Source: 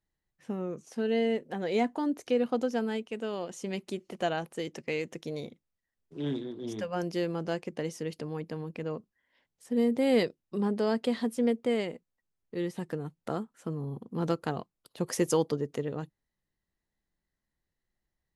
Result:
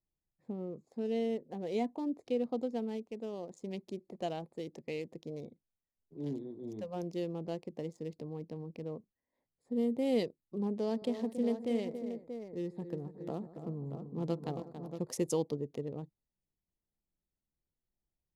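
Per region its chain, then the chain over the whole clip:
10.74–15.08 s: peaking EQ 1.7 kHz +3 dB 0.26 oct + multi-tap echo 151/278/364/632 ms -17/-9.5/-18/-8.5 dB
whole clip: local Wiener filter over 15 samples; peaking EQ 1.5 kHz -15 dB 0.8 oct; trim -5 dB

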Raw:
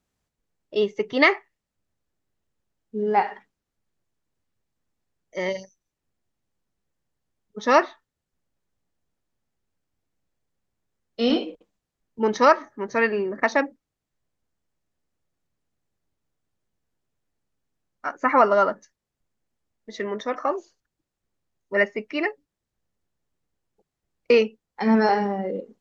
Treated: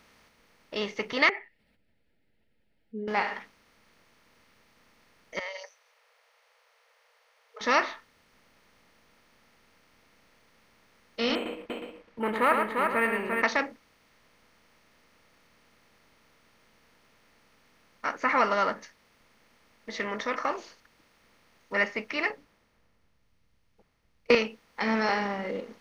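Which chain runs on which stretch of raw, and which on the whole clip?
1.29–3.08 s: spectral contrast enhancement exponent 1.7 + static phaser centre 2.7 kHz, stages 4
5.39–7.61 s: treble shelf 4.6 kHz -7.5 dB + compression 10:1, threshold -34 dBFS + brick-wall FIR high-pass 440 Hz
11.35–13.42 s: Butterworth band-stop 5.4 kHz, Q 0.7 + multi-tap echo 106/348/468 ms -8.5/-6.5/-18.5 dB + decimation joined by straight lines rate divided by 4×
22.30–24.35 s: tilt shelf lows +4 dB, about 1.2 kHz + three bands expanded up and down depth 70%
whole clip: spectral levelling over time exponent 0.6; peaking EQ 390 Hz -10.5 dB 2.9 oct; band-stop 750 Hz, Q 16; trim -3.5 dB

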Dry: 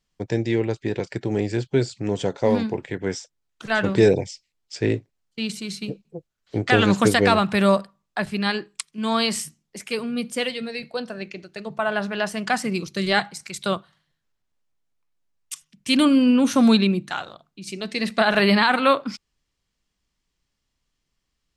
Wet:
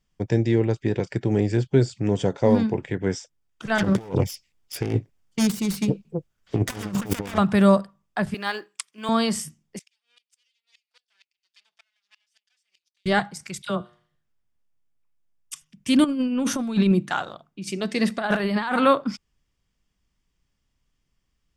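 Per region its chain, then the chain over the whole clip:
3.78–7.38 s: self-modulated delay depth 0.83 ms + compressor with a negative ratio -25 dBFS, ratio -0.5
8.34–9.09 s: high-pass 530 Hz + short-mantissa float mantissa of 4-bit
9.79–13.06 s: comb filter that takes the minimum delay 5.8 ms + ladder band-pass 4.9 kHz, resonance 25% + inverted gate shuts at -39 dBFS, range -25 dB
13.62–15.53 s: feedback comb 120 Hz, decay 0.5 s, mix 40% + phase dispersion lows, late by 41 ms, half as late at 1.2 kHz
16.04–18.86 s: bass shelf 140 Hz -9.5 dB + compressor with a negative ratio -22 dBFS, ratio -0.5 + tape noise reduction on one side only decoder only
whole clip: tone controls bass +5 dB, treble -2 dB; band-stop 4.1 kHz, Q 8.2; dynamic bell 2.5 kHz, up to -7 dB, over -40 dBFS, Q 1.8

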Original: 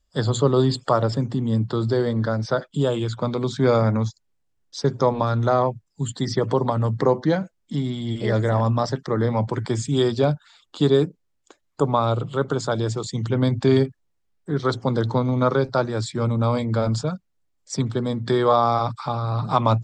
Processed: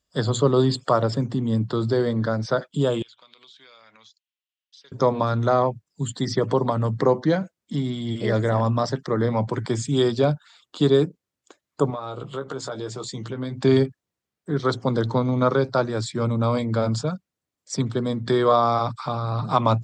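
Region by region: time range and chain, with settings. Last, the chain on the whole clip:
3.02–4.92 s: band-pass filter 3 kHz, Q 3.3 + tilt EQ +1.5 dB/octave + compression 5:1, threshold -47 dBFS
11.90–13.62 s: tone controls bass -6 dB, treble -2 dB + compression 5:1, threshold -28 dBFS + doubling 15 ms -6 dB
whole clip: high-pass 100 Hz; band-stop 840 Hz, Q 17

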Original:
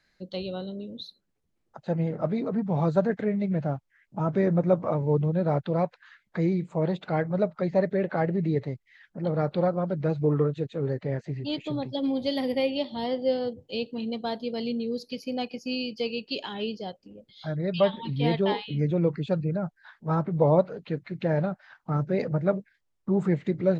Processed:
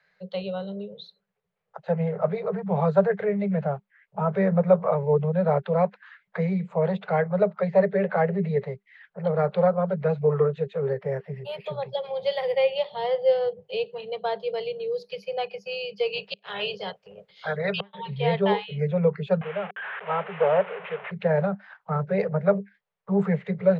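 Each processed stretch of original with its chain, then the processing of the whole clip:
10.98–11.66 s: distance through air 80 m + decimation joined by straight lines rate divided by 6×
16.12–17.93 s: spectral peaks clipped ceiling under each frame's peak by 17 dB + inverted gate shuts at -17 dBFS, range -37 dB
19.41–21.11 s: one-bit delta coder 16 kbps, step -32 dBFS + Bessel high-pass 430 Hz
whole clip: Chebyshev band-stop 200–400 Hz, order 5; three-band isolator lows -21 dB, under 160 Hz, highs -18 dB, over 3.1 kHz; trim +5.5 dB

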